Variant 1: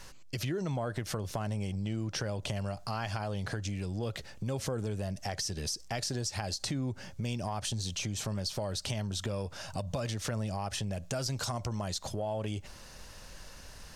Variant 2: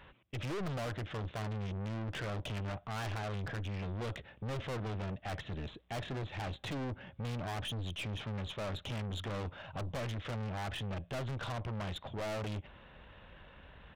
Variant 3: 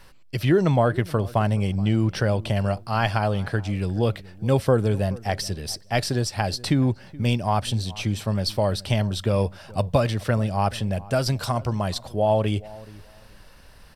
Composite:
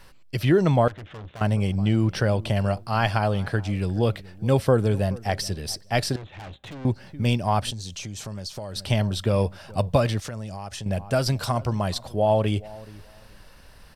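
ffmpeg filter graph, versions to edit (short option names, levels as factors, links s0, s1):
-filter_complex "[1:a]asplit=2[s0][s1];[0:a]asplit=2[s2][s3];[2:a]asplit=5[s4][s5][s6][s7][s8];[s4]atrim=end=0.882[s9];[s0]atrim=start=0.878:end=1.412[s10];[s5]atrim=start=1.408:end=6.162[s11];[s1]atrim=start=6.158:end=6.852[s12];[s6]atrim=start=6.848:end=7.712[s13];[s2]atrim=start=7.708:end=8.762[s14];[s7]atrim=start=8.758:end=10.202[s15];[s3]atrim=start=10.198:end=10.862[s16];[s8]atrim=start=10.858[s17];[s9][s10]acrossfade=d=0.004:c1=hsin:c2=hsin[s18];[s18][s11]acrossfade=d=0.004:c1=hsin:c2=hsin[s19];[s19][s12]acrossfade=d=0.004:c1=hsin:c2=hsin[s20];[s20][s13]acrossfade=d=0.004:c1=hsin:c2=hsin[s21];[s21][s14]acrossfade=d=0.004:c1=hsin:c2=hsin[s22];[s22][s15]acrossfade=d=0.004:c1=hsin:c2=hsin[s23];[s23][s16]acrossfade=d=0.004:c1=hsin:c2=hsin[s24];[s24][s17]acrossfade=d=0.004:c1=hsin:c2=hsin"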